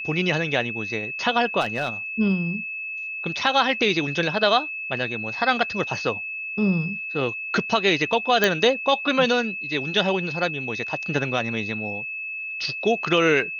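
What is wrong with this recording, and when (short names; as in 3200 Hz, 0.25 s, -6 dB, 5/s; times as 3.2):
tone 2600 Hz -29 dBFS
1.6–1.9 clipped -18 dBFS
8.44 pop -4 dBFS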